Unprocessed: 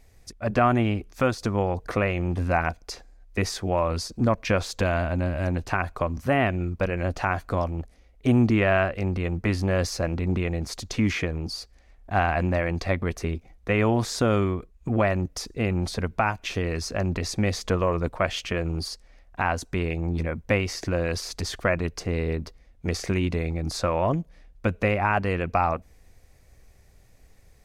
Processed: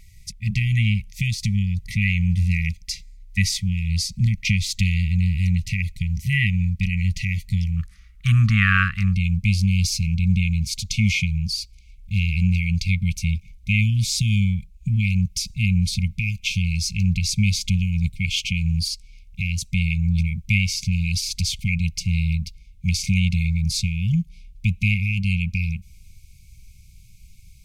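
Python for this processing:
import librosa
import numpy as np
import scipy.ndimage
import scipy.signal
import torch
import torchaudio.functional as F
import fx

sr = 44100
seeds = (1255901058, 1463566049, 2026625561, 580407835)

y = fx.brickwall_bandstop(x, sr, low_hz=210.0, high_hz=fx.steps((0.0, 1900.0), (7.76, 1100.0), (9.13, 2100.0)))
y = y * 10.0 ** (8.0 / 20.0)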